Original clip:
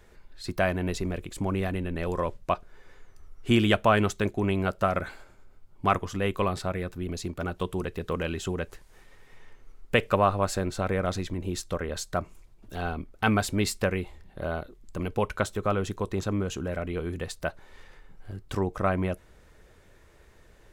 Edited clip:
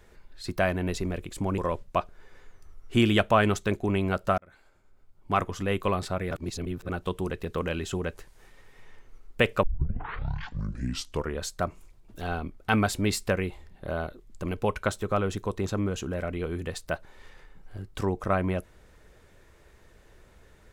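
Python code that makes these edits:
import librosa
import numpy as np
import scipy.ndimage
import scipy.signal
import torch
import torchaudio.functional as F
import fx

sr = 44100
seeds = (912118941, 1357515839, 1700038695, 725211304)

y = fx.edit(x, sr, fx.cut(start_s=1.58, length_s=0.54),
    fx.fade_in_span(start_s=4.92, length_s=1.19),
    fx.reverse_span(start_s=6.85, length_s=0.58),
    fx.tape_start(start_s=10.17, length_s=1.82), tone=tone)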